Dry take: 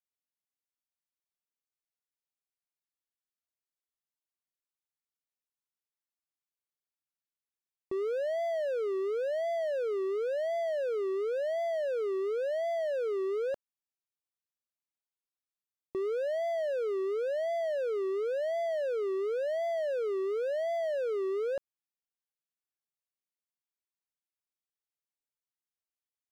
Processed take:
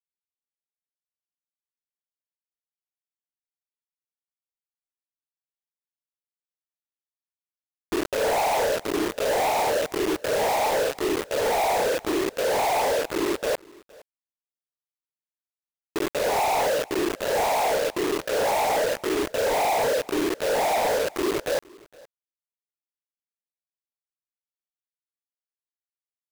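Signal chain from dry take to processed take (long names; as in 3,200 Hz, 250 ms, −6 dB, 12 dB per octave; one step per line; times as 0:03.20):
running median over 25 samples
parametric band 1,900 Hz −10 dB 0.58 octaves
in parallel at +1 dB: brickwall limiter −35.5 dBFS, peak gain reduction 7 dB
on the sum: phaser with its sweep stopped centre 660 Hz, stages 8
cochlear-implant simulation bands 12
log-companded quantiser 2 bits
on a send: single-tap delay 464 ms −24 dB
on the sum: level +3.5 dB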